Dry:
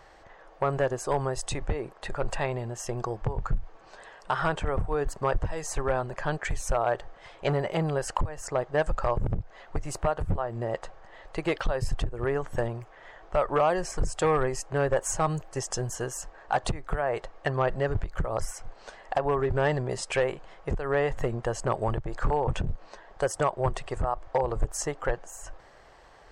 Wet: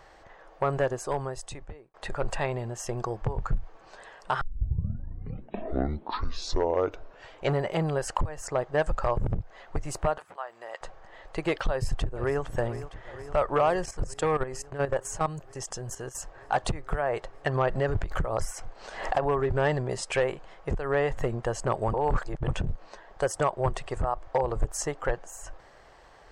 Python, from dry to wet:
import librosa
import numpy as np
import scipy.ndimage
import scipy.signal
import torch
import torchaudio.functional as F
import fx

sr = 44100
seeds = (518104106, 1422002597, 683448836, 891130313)

y = fx.highpass(x, sr, hz=1000.0, slope=12, at=(10.18, 10.81))
y = fx.echo_throw(y, sr, start_s=11.69, length_s=0.73, ms=460, feedback_pct=80, wet_db=-13.5)
y = fx.level_steps(y, sr, step_db=12, at=(13.85, 16.15))
y = fx.pre_swell(y, sr, db_per_s=79.0, at=(17.46, 19.29))
y = fx.edit(y, sr, fx.fade_out_span(start_s=0.82, length_s=1.12),
    fx.tape_start(start_s=4.41, length_s=3.14),
    fx.reverse_span(start_s=21.93, length_s=0.55), tone=tone)